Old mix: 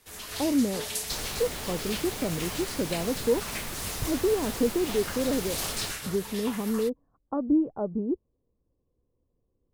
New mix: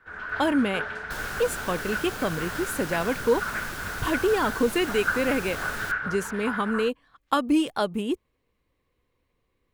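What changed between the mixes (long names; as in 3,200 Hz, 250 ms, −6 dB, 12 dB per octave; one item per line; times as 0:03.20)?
speech: remove Bessel low-pass filter 510 Hz, order 4
first sound: add low-pass with resonance 1,500 Hz, resonance Q 13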